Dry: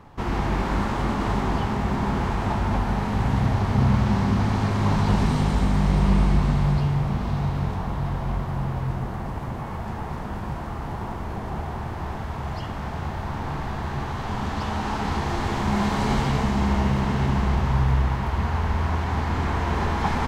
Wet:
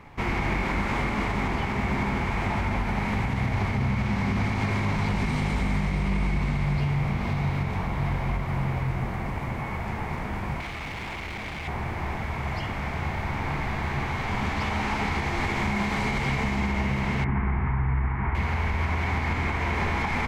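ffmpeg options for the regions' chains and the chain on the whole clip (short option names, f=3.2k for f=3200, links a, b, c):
-filter_complex "[0:a]asettb=1/sr,asplit=3[a][b][c];[a]atrim=end=10.604[d];[b]atrim=start=10.6:end=11.68,asetpts=PTS-STARTPTS,afade=t=in:d=0.004:c=qsin,afade=t=out:st=1.076:d=0.004:c=qsin,equalizer=f=3.4k:t=o:w=1.4:g=13,asoftclip=type=hard:threshold=-34dB[e];[c]atrim=start=11.676[f];[d][e]acrossfade=d=0.004:c1=hsin:c2=qsin[g];[g][f]acrossfade=d=0.004:c1=qsin:c2=hsin,asettb=1/sr,asplit=3[h][i][j];[h]atrim=end=17.244[k];[i]atrim=start=17.24:end=18.35,asetpts=PTS-STARTPTS,afade=t=in:d=0.004:c=qsin,afade=t=out:st=1.106:d=0.004:c=qsin,lowpass=f=1.9k:w=0.5412,lowpass=f=1.9k:w=1.3066,equalizer=f=560:w=3.5:g=-13.5[l];[j]atrim=start=18.346[m];[k][l]acrossfade=d=0.004:c1=hsin:c2=qsin[n];[n][m]acrossfade=d=0.004:c1=qsin:c2=hsin,equalizer=f=2.2k:t=o:w=0.39:g=14,bandreject=f=54.71:t=h:w=4,bandreject=f=109.42:t=h:w=4,bandreject=f=164.13:t=h:w=4,bandreject=f=218.84:t=h:w=4,bandreject=f=273.55:t=h:w=4,bandreject=f=328.26:t=h:w=4,bandreject=f=382.97:t=h:w=4,bandreject=f=437.68:t=h:w=4,bandreject=f=492.39:t=h:w=4,bandreject=f=547.1:t=h:w=4,bandreject=f=601.81:t=h:w=4,bandreject=f=656.52:t=h:w=4,bandreject=f=711.23:t=h:w=4,bandreject=f=765.94:t=h:w=4,bandreject=f=820.65:t=h:w=4,bandreject=f=875.36:t=h:w=4,bandreject=f=930.07:t=h:w=4,bandreject=f=984.78:t=h:w=4,bandreject=f=1.03949k:t=h:w=4,bandreject=f=1.0942k:t=h:w=4,bandreject=f=1.14891k:t=h:w=4,bandreject=f=1.20362k:t=h:w=4,bandreject=f=1.25833k:t=h:w=4,bandreject=f=1.31304k:t=h:w=4,bandreject=f=1.36775k:t=h:w=4,bandreject=f=1.42246k:t=h:w=4,bandreject=f=1.47717k:t=h:w=4,bandreject=f=1.53188k:t=h:w=4,bandreject=f=1.58659k:t=h:w=4,bandreject=f=1.6413k:t=h:w=4,bandreject=f=1.69601k:t=h:w=4,bandreject=f=1.75072k:t=h:w=4,bandreject=f=1.80543k:t=h:w=4,bandreject=f=1.86014k:t=h:w=4,bandreject=f=1.91485k:t=h:w=4,bandreject=f=1.96956k:t=h:w=4,bandreject=f=2.02427k:t=h:w=4,bandreject=f=2.07898k:t=h:w=4,bandreject=f=2.13369k:t=h:w=4,alimiter=limit=-17dB:level=0:latency=1:release=120"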